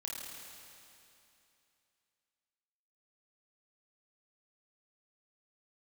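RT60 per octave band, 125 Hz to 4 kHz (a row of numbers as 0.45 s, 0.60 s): 2.8 s, 2.8 s, 2.8 s, 2.8 s, 2.8 s, 2.8 s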